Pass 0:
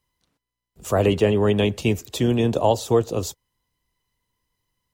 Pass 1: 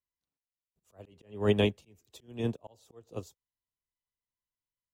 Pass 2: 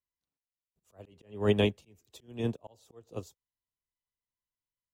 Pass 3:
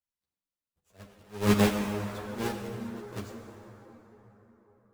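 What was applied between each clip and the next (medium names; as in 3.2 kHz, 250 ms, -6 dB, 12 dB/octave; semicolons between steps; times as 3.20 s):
slow attack 294 ms; upward expansion 2.5:1, over -31 dBFS; trim -3 dB
no audible change
square wave that keeps the level; plate-style reverb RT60 4.4 s, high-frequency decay 0.5×, DRR 3 dB; three-phase chorus; trim -1 dB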